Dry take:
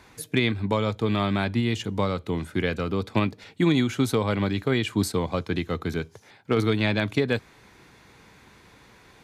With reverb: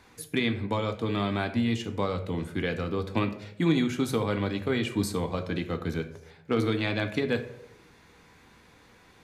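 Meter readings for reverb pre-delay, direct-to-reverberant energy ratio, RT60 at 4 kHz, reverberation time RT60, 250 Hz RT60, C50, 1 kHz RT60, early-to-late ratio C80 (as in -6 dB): 3 ms, 6.0 dB, 0.40 s, 0.75 s, 0.85 s, 11.5 dB, 0.60 s, 14.5 dB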